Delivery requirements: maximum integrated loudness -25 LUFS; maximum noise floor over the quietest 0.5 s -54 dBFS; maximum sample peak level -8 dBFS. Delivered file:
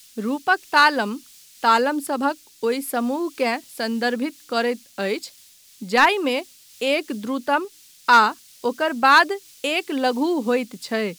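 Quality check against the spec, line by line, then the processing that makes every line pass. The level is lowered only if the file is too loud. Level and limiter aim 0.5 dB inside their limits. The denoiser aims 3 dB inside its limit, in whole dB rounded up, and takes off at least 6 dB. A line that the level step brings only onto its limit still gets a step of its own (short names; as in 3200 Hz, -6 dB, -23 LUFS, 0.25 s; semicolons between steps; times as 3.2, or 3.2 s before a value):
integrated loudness -21.0 LUFS: fail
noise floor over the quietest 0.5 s -51 dBFS: fail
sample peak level -5.5 dBFS: fail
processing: gain -4.5 dB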